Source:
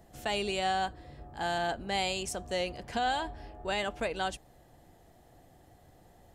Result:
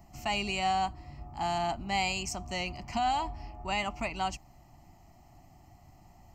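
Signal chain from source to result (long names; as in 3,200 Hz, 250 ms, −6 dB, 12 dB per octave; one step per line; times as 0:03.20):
phaser with its sweep stopped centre 2,400 Hz, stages 8
level +4.5 dB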